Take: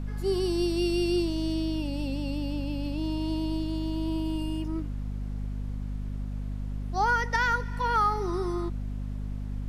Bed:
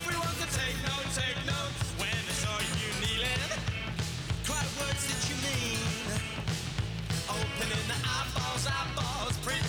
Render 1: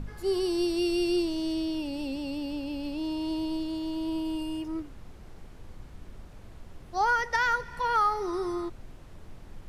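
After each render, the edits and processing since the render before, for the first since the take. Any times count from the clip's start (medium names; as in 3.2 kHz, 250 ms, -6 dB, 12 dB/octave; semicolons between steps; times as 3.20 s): de-hum 50 Hz, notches 5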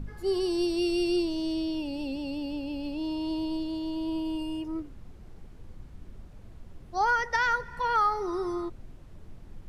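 noise reduction 6 dB, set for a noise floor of -48 dBFS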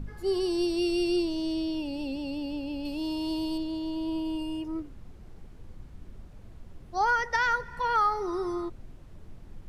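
2.85–3.58 s: treble shelf 5 kHz +11.5 dB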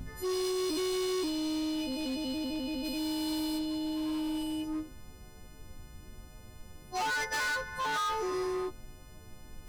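partials quantised in pitch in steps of 3 st; hard clipper -30 dBFS, distortion -7 dB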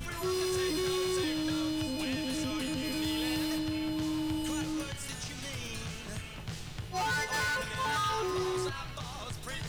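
add bed -8 dB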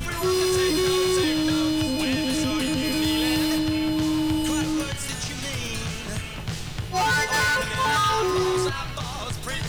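trim +9.5 dB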